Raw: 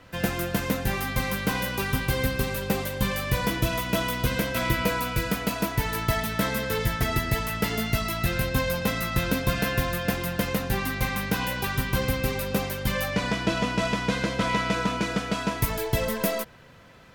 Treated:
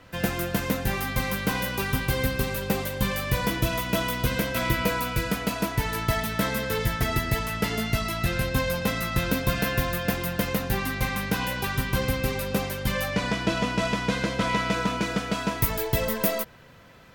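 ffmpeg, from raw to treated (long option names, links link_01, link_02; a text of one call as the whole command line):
ffmpeg -i in.wav -af "asetnsamples=nb_out_samples=441:pad=0,asendcmd='5.18 equalizer g -7;6.11 equalizer g -0.5;7.39 equalizer g -11.5;8.45 equalizer g -3.5;9.29 equalizer g 5;10.82 equalizer g -3.5;13.41 equalizer g 3;14.6 equalizer g 10.5',equalizer=frequency=16000:width_type=o:width=0.26:gain=2.5" out.wav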